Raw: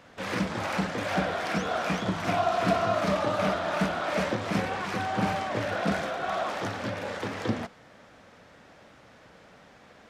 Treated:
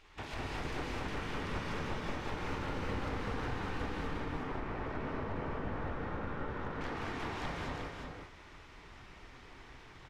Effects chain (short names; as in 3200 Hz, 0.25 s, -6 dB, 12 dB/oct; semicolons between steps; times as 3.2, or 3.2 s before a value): one-sided fold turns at -25.5 dBFS; 4.01–6.81 LPF 1000 Hz 6 dB/oct; spectral gate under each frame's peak -10 dB weak; tilt -3 dB/oct; compressor 5:1, threshold -42 dBFS, peak gain reduction 16.5 dB; echo 0.358 s -4.5 dB; non-linear reverb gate 0.27 s rising, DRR -2 dB; gain +1 dB